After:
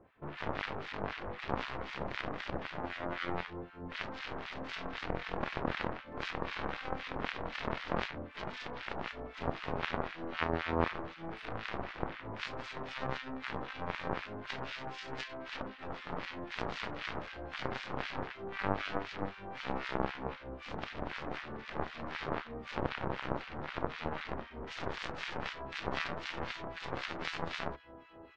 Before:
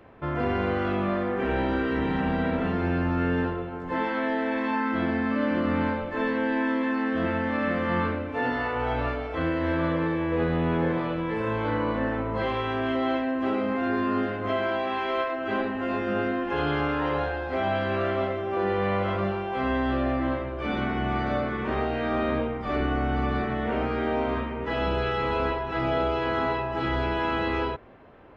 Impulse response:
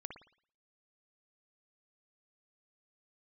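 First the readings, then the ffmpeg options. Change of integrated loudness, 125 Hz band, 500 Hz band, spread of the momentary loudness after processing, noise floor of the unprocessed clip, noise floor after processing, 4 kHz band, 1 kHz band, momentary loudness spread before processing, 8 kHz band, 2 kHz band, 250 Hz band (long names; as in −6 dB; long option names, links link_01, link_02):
−12.5 dB, −13.5 dB, −14.0 dB, 6 LU, −33 dBFS, −51 dBFS, −4.5 dB, −11.0 dB, 3 LU, can't be measured, −9.5 dB, −16.5 dB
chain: -filter_complex "[0:a]aecho=1:1:773|1546|2319|3092|3865:0.112|0.0628|0.0352|0.0197|0.011,aeval=exprs='0.237*(cos(1*acos(clip(val(0)/0.237,-1,1)))-cos(1*PI/2))+0.0944*(cos(3*acos(clip(val(0)/0.237,-1,1)))-cos(3*PI/2))+0.00944*(cos(4*acos(clip(val(0)/0.237,-1,1)))-cos(4*PI/2))':channel_layout=same,acrossover=split=1300[link_01][link_02];[link_01]aeval=exprs='val(0)*(1-1/2+1/2*cos(2*PI*3.9*n/s))':channel_layout=same[link_03];[link_02]aeval=exprs='val(0)*(1-1/2-1/2*cos(2*PI*3.9*n/s))':channel_layout=same[link_04];[link_03][link_04]amix=inputs=2:normalize=0,volume=6.5dB"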